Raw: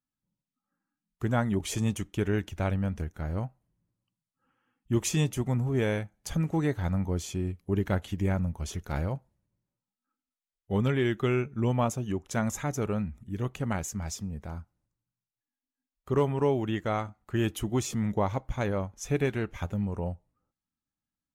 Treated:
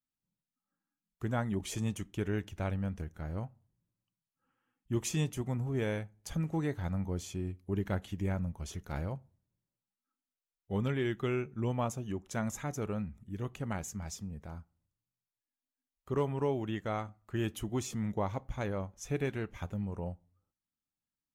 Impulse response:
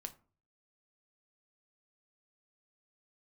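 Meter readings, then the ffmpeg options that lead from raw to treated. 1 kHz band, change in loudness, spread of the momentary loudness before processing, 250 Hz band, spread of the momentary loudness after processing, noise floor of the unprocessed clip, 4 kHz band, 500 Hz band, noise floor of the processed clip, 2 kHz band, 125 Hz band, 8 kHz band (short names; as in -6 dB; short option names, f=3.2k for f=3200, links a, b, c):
-6.0 dB, -6.0 dB, 8 LU, -6.0 dB, 8 LU, under -85 dBFS, -6.0 dB, -6.0 dB, under -85 dBFS, -6.0 dB, -6.0 dB, -6.0 dB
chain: -filter_complex "[0:a]asplit=2[a][b];[1:a]atrim=start_sample=2205[c];[b][c]afir=irnorm=-1:irlink=0,volume=-7dB[d];[a][d]amix=inputs=2:normalize=0,volume=-8dB"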